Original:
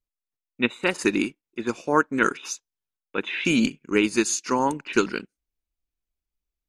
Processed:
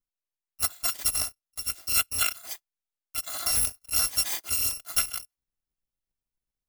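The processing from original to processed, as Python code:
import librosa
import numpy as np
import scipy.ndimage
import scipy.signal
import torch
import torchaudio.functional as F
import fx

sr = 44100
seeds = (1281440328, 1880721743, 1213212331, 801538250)

y = fx.bit_reversed(x, sr, seeds[0], block=256)
y = F.gain(torch.from_numpy(y), -4.5).numpy()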